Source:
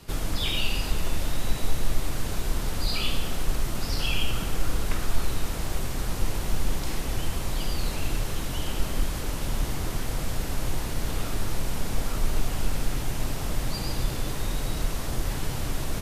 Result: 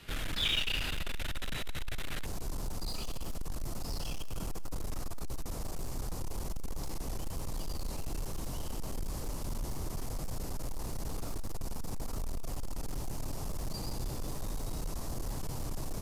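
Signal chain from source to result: hard clipper -24.5 dBFS, distortion -7 dB; high-order bell 2.3 kHz +8.5 dB, from 2.24 s -8 dB; thinning echo 179 ms, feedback 37%, level -19 dB; trim -6.5 dB

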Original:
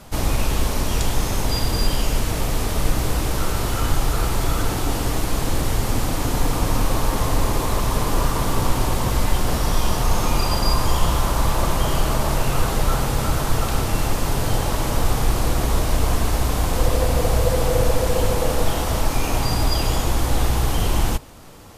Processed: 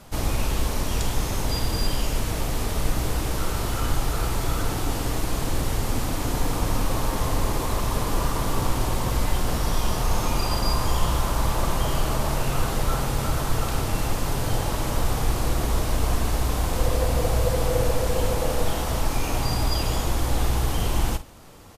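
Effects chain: doubling 50 ms -13.5 dB; trim -4 dB

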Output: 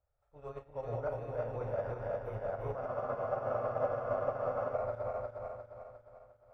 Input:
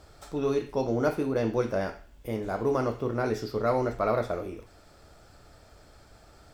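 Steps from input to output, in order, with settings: backward echo that repeats 177 ms, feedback 85%, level -3 dB; FFT filter 120 Hz 0 dB, 190 Hz -16 dB, 340 Hz -20 dB, 540 Hz +1 dB, 2.6 kHz -10 dB, 4.2 kHz -21 dB, 9.2 kHz -19 dB; peak limiter -24 dBFS, peak gain reduction 9.5 dB; treble shelf 9.3 kHz -5.5 dB; on a send: flutter echo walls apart 6 m, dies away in 0.21 s; on the sum: spectral freeze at 2.89 s, 1.85 s; upward expansion 2.5:1, over -46 dBFS

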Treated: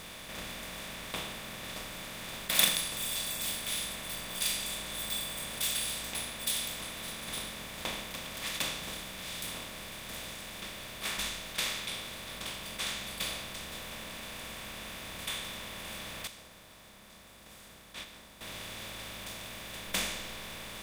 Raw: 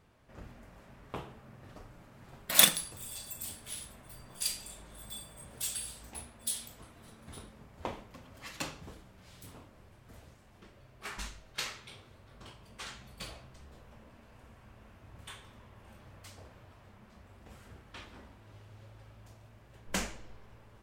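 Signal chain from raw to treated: spectral levelling over time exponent 0.4; 16.27–18.41 s: gate -30 dBFS, range -10 dB; dynamic bell 2.7 kHz, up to +4 dB, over -46 dBFS, Q 1.1; trim -7.5 dB

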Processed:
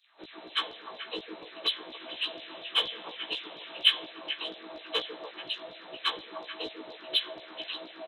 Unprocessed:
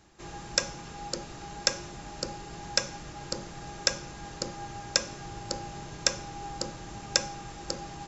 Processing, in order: frequency axis rescaled in octaves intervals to 82%; 1.92–4.06 s: resonant high shelf 4.8 kHz -13 dB, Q 3; LFO high-pass saw down 4.2 Hz 300–4500 Hz; in parallel at -10 dB: overload inside the chain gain 23.5 dB; on the sum: doubling 16 ms -4 dB; on a send: repeats whose band climbs or falls 145 ms, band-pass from 280 Hz, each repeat 1.4 oct, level -1 dB; on the sum: trim -5.5 dB

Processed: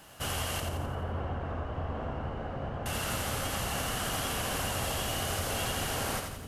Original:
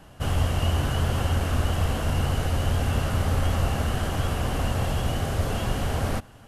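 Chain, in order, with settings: compression 2:1, threshold -25 dBFS, peak gain reduction 4.5 dB; tilt EQ +2.5 dB/octave; bit crusher 11-bit; 0.60–2.86 s: low-pass 1 kHz 12 dB/octave; two-band feedback delay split 360 Hz, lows 470 ms, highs 86 ms, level -5 dB; trim -2 dB

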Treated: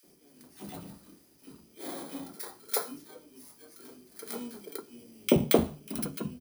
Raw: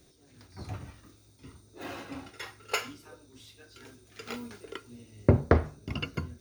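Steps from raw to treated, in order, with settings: bit-reversed sample order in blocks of 16 samples; resonant low shelf 140 Hz -11 dB, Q 3; three bands offset in time highs, mids, lows 30/70 ms, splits 210/1500 Hz; trim +1 dB

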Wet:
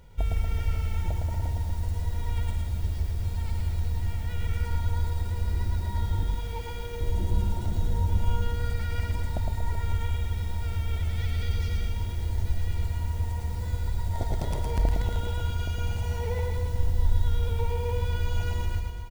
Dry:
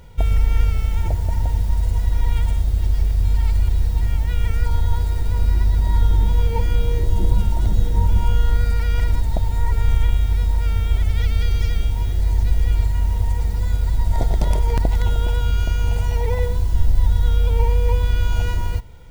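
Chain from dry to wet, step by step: 6.23–7.01 s: bass shelf 400 Hz -10.5 dB; reverse bouncing-ball echo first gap 110 ms, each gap 1.15×, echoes 5; trim -8.5 dB

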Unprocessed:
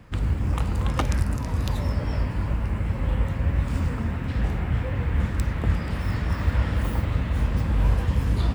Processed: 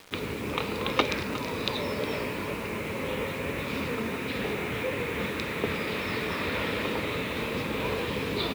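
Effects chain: cabinet simulation 280–5400 Hz, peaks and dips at 430 Hz +9 dB, 760 Hz -5 dB, 1.6 kHz -3 dB, 2.4 kHz +9 dB, 3.8 kHz +9 dB; bit crusher 8-bit; delay 361 ms -14.5 dB; trim +2.5 dB

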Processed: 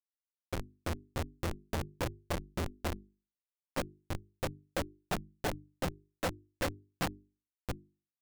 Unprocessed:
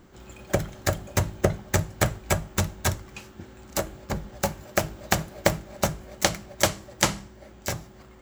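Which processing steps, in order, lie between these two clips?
frequency-domain pitch shifter -1.5 st; peaking EQ 6.9 kHz -15 dB 0.56 oct; Schmitt trigger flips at -24.5 dBFS; bass shelf 84 Hz -8 dB; hum notches 50/100/150/200/250/300/350/400 Hz; trim +3 dB

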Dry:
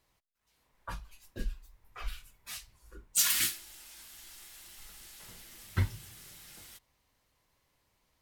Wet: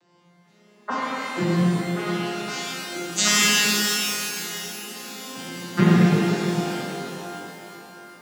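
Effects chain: vocoder on a broken chord minor triad, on F3, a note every 446 ms; pitch-shifted reverb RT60 3.3 s, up +12 st, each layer -8 dB, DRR -8.5 dB; trim +9 dB

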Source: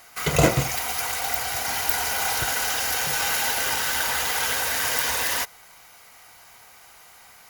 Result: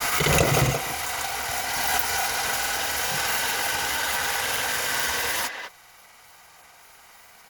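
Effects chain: speakerphone echo 260 ms, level -6 dB; granulator, pitch spread up and down by 0 st; swell ahead of each attack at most 21 dB/s

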